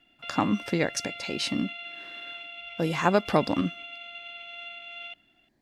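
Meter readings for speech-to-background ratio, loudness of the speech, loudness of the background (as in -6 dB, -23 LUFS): 11.0 dB, -28.0 LUFS, -39.0 LUFS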